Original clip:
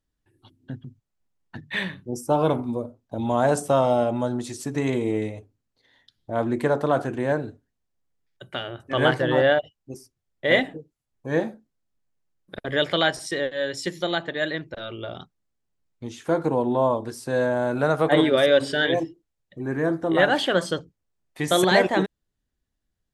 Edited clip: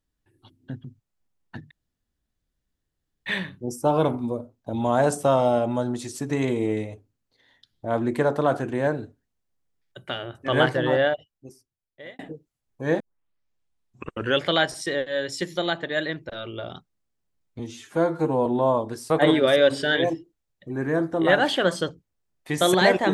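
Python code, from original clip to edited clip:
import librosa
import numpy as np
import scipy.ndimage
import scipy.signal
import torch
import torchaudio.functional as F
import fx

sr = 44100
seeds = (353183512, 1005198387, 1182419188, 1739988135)

y = fx.edit(x, sr, fx.insert_room_tone(at_s=1.71, length_s=1.55),
    fx.fade_out_span(start_s=9.11, length_s=1.53),
    fx.tape_start(start_s=11.45, length_s=1.46),
    fx.stretch_span(start_s=16.04, length_s=0.58, factor=1.5),
    fx.cut(start_s=17.26, length_s=0.74), tone=tone)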